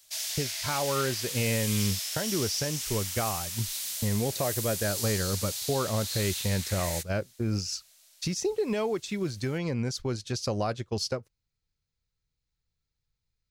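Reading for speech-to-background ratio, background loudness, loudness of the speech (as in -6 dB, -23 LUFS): 0.5 dB, -32.0 LUFS, -31.5 LUFS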